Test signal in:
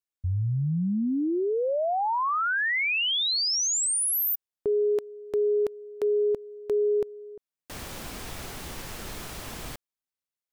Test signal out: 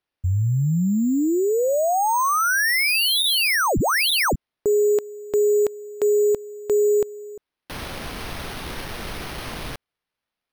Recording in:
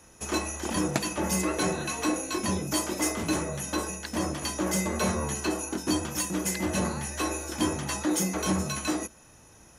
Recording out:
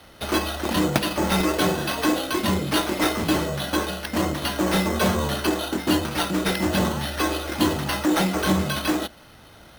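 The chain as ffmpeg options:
-af "acrusher=samples=6:mix=1:aa=0.000001,volume=6dB"

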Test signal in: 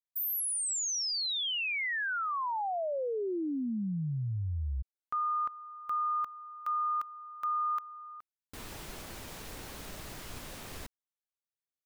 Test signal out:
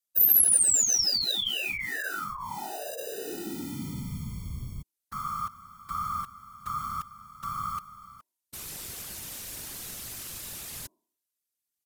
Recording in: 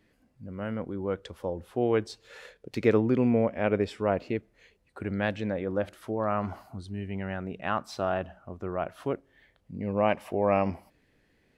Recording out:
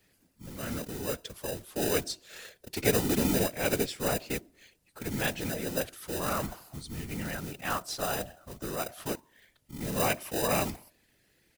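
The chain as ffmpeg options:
-filter_complex "[0:a]aresample=32000,aresample=44100,asplit=2[a][b];[b]acrusher=samples=40:mix=1:aa=0.000001,volume=-8dB[c];[a][c]amix=inputs=2:normalize=0,bandreject=f=322.7:t=h:w=4,bandreject=f=645.4:t=h:w=4,bandreject=f=968.1:t=h:w=4,crystalizer=i=5.5:c=0,afftfilt=real='hypot(re,im)*cos(2*PI*random(0))':imag='hypot(re,im)*sin(2*PI*random(1))':win_size=512:overlap=0.75"

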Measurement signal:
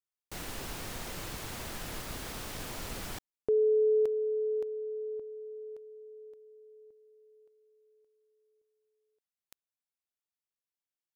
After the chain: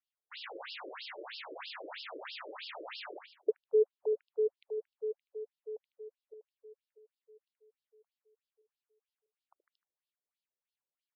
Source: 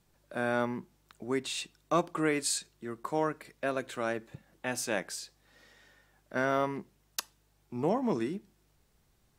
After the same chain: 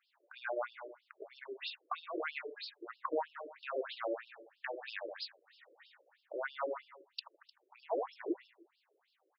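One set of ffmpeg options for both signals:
-af "aecho=1:1:76|152|228|304|380:0.398|0.183|0.0842|0.0388|0.0178,alimiter=limit=-24dB:level=0:latency=1:release=217,afftfilt=real='re*between(b*sr/1024,420*pow(3900/420,0.5+0.5*sin(2*PI*3.1*pts/sr))/1.41,420*pow(3900/420,0.5+0.5*sin(2*PI*3.1*pts/sr))*1.41)':imag='im*between(b*sr/1024,420*pow(3900/420,0.5+0.5*sin(2*PI*3.1*pts/sr))/1.41,420*pow(3900/420,0.5+0.5*sin(2*PI*3.1*pts/sr))*1.41)':win_size=1024:overlap=0.75,volume=4.5dB"

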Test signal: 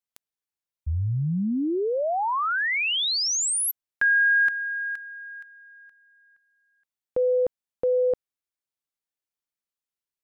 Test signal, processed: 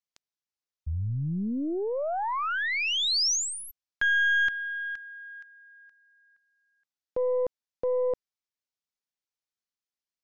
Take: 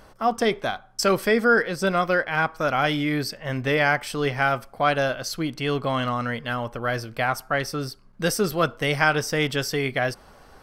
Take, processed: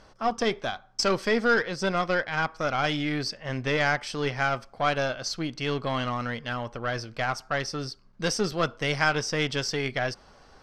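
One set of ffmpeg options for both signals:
-af "aeval=exprs='0.596*(cos(1*acos(clip(val(0)/0.596,-1,1)))-cos(1*PI/2))+0.0266*(cos(8*acos(clip(val(0)/0.596,-1,1)))-cos(8*PI/2))':c=same,lowpass=f=5.7k:t=q:w=1.7,volume=-4.5dB"

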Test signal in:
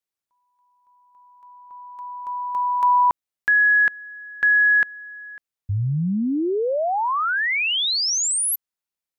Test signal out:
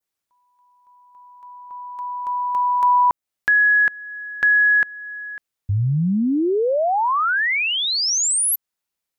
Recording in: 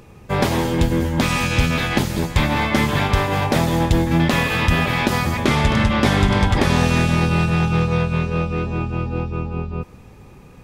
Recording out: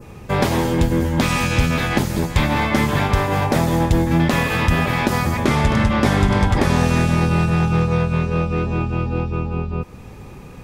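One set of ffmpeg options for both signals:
-filter_complex "[0:a]adynamicequalizer=threshold=0.0141:dfrequency=3300:dqfactor=1.1:tfrequency=3300:tqfactor=1.1:attack=5:release=100:ratio=0.375:range=2.5:mode=cutabove:tftype=bell,asplit=2[a][b];[b]acompressor=threshold=-26dB:ratio=6:attack=1.5:release=550:knee=6:detection=peak,volume=2.5dB[c];[a][c]amix=inputs=2:normalize=0,volume=-1.5dB"

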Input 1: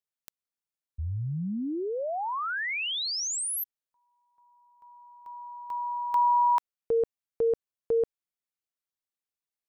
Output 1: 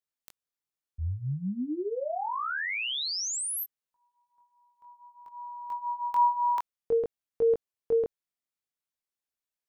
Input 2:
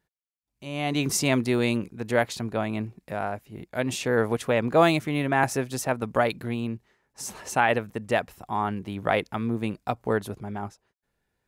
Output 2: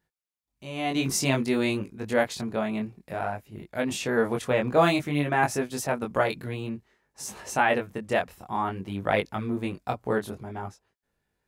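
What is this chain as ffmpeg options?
-af "flanger=delay=19.5:depth=4:speed=0.54,volume=2dB"

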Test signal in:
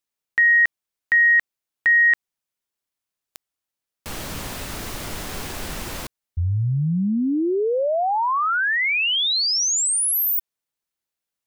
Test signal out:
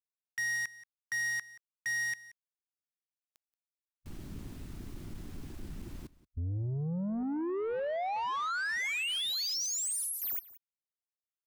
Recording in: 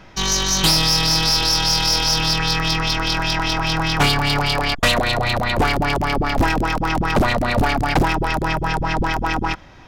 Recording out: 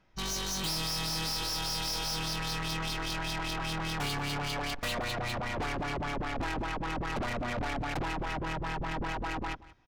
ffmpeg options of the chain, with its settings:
-af "afwtdn=0.0501,asoftclip=type=tanh:threshold=-24dB,aecho=1:1:179:0.106,volume=-7.5dB"

